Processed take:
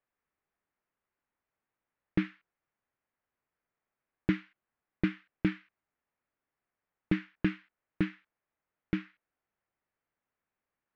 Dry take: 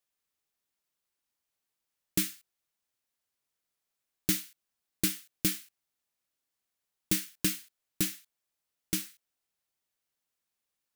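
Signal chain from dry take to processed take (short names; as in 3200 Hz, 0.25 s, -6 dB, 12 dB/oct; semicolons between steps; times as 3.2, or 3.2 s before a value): LPF 2100 Hz 24 dB/oct; gain +4.5 dB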